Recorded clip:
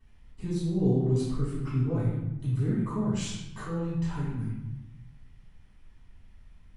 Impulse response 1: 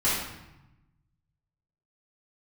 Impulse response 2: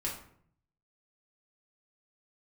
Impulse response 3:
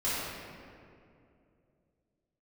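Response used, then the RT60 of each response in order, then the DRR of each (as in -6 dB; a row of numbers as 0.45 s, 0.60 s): 1; 0.95 s, 0.60 s, 2.6 s; -11.5 dB, -4.5 dB, -13.0 dB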